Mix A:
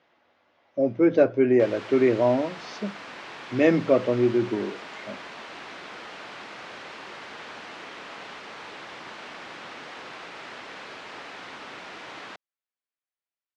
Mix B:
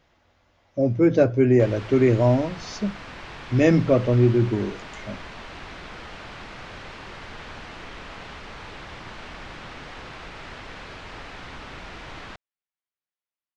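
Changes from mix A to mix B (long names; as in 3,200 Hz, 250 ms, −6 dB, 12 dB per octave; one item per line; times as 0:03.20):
speech: remove low-pass filter 3,700 Hz 12 dB per octave
master: remove high-pass filter 270 Hz 12 dB per octave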